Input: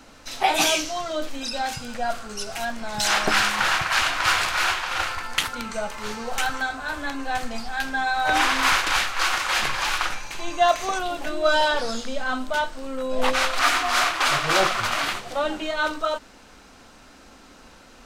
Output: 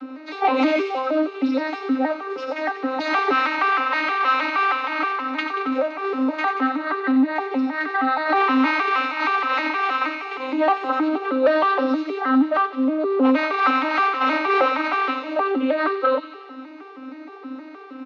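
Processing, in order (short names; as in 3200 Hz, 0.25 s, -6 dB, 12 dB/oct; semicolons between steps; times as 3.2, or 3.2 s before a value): arpeggiated vocoder minor triad, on C4, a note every 0.157 s; comb 6.9 ms, depth 79%; in parallel at 0 dB: compressor, threshold -32 dBFS, peak gain reduction 19.5 dB; on the sum: soft clip -14.5 dBFS, distortion -15 dB; speaker cabinet 170–4100 Hz, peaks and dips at 270 Hz +8 dB, 500 Hz +10 dB, 860 Hz +8 dB, 1300 Hz +7 dB, 2100 Hz +5 dB; thin delay 91 ms, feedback 67%, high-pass 2700 Hz, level -6.5 dB; gain -3 dB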